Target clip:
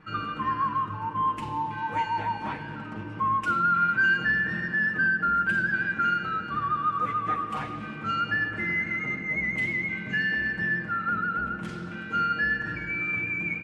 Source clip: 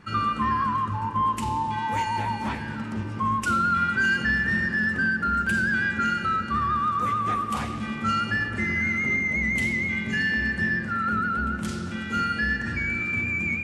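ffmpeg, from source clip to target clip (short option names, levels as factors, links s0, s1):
-af "bass=f=250:g=-4,treble=f=4000:g=-15,aecho=1:1:6.4:0.68,volume=0.708"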